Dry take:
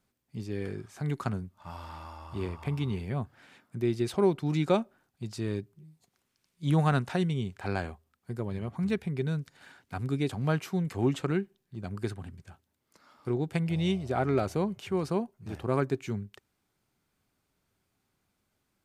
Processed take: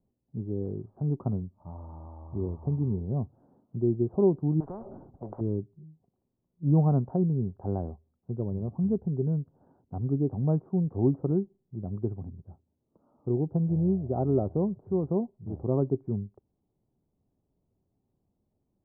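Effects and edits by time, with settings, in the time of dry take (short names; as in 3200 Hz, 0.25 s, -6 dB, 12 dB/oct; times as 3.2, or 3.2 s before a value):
4.6–5.41 spectral compressor 10:1
whole clip: Bessel low-pass 510 Hz, order 8; gain +3.5 dB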